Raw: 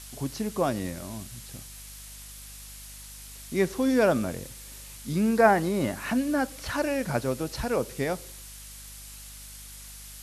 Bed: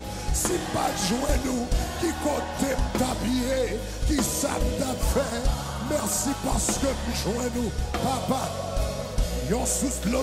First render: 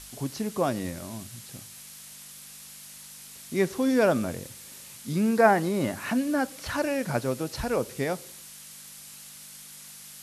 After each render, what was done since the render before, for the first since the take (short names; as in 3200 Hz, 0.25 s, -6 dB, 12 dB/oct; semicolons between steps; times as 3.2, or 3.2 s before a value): de-hum 50 Hz, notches 2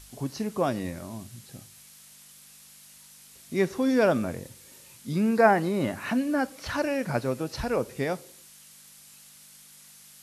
noise print and reduce 6 dB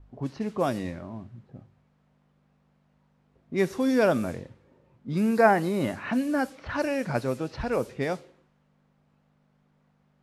low-pass opened by the level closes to 620 Hz, open at -22.5 dBFS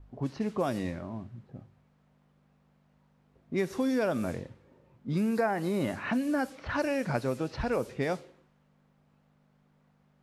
compressor 6:1, threshold -25 dBFS, peak gain reduction 11.5 dB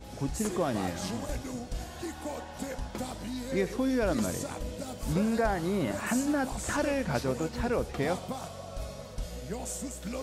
add bed -11.5 dB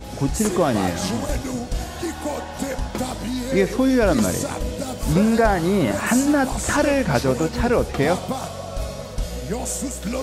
gain +10.5 dB